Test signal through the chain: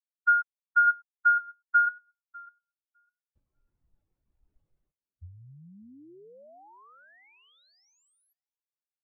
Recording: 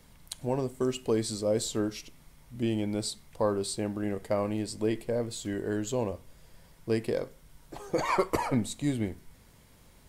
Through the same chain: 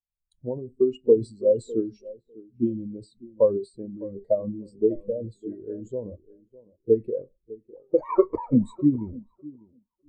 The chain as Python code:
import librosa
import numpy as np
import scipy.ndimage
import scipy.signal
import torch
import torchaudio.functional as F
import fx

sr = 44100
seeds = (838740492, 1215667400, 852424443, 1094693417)

y = fx.transient(x, sr, attack_db=6, sustain_db=10)
y = fx.echo_tape(y, sr, ms=602, feedback_pct=43, wet_db=-7, lp_hz=1900.0, drive_db=10.0, wow_cents=32)
y = fx.spectral_expand(y, sr, expansion=2.5)